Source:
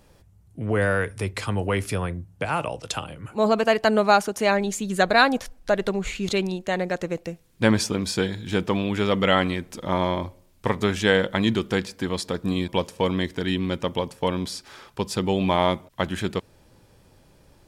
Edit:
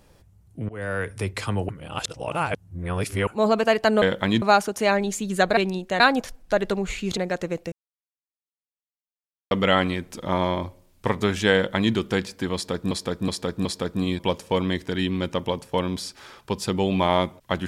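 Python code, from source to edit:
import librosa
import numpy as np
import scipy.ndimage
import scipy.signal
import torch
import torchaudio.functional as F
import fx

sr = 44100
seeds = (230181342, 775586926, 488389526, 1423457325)

y = fx.edit(x, sr, fx.fade_in_from(start_s=0.69, length_s=0.47, floor_db=-23.5),
    fx.reverse_span(start_s=1.69, length_s=1.58),
    fx.move(start_s=6.34, length_s=0.43, to_s=5.17),
    fx.silence(start_s=7.32, length_s=1.79),
    fx.duplicate(start_s=11.14, length_s=0.4, to_s=4.02),
    fx.repeat(start_s=12.14, length_s=0.37, count=4), tone=tone)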